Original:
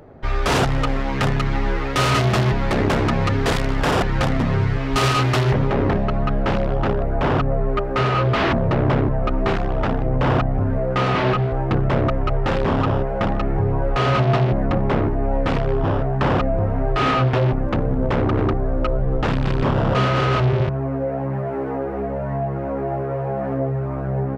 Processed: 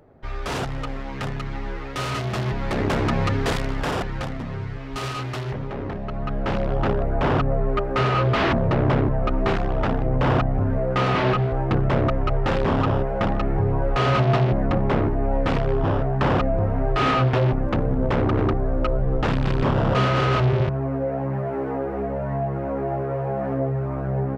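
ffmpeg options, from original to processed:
ffmpeg -i in.wav -af "volume=7.5dB,afade=type=in:start_time=2.25:duration=0.94:silence=0.446684,afade=type=out:start_time=3.19:duration=1.19:silence=0.354813,afade=type=in:start_time=5.97:duration=0.86:silence=0.334965" out.wav

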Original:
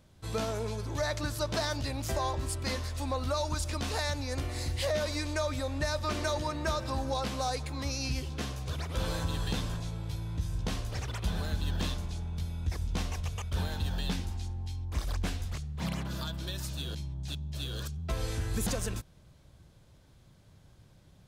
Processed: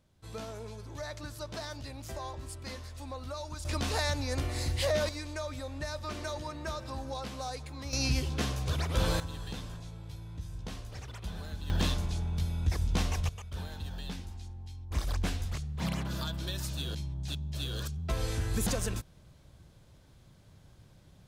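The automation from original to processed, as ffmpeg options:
ffmpeg -i in.wav -af "asetnsamples=nb_out_samples=441:pad=0,asendcmd='3.65 volume volume 1.5dB;5.09 volume volume -6dB;7.93 volume volume 4dB;9.2 volume volume -7.5dB;11.7 volume volume 3.5dB;13.29 volume volume -7dB;14.91 volume volume 1dB',volume=-8.5dB" out.wav

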